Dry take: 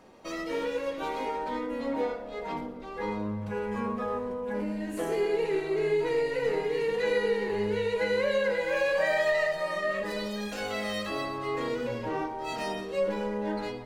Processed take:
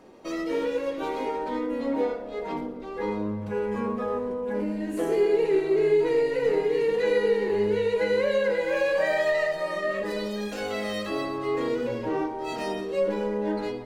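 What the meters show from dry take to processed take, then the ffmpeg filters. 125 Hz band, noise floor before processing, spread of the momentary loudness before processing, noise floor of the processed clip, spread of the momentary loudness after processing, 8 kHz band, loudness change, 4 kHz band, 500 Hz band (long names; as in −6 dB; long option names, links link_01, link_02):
+1.5 dB, −39 dBFS, 7 LU, −36 dBFS, 8 LU, can't be measured, +3.5 dB, 0.0 dB, +4.5 dB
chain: -af "equalizer=frequency=350:width_type=o:width=1.1:gain=7"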